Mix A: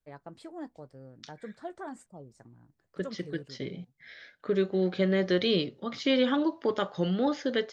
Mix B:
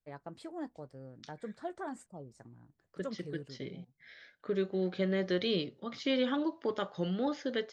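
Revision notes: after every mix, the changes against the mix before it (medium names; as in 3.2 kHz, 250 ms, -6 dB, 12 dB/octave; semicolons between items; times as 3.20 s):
second voice -5.5 dB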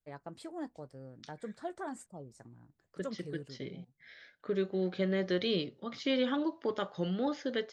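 first voice: add treble shelf 6.9 kHz +7.5 dB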